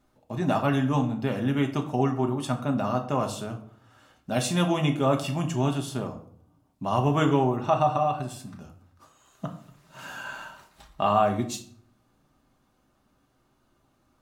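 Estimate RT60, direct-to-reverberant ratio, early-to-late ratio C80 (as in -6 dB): 0.60 s, 3.0 dB, 15.0 dB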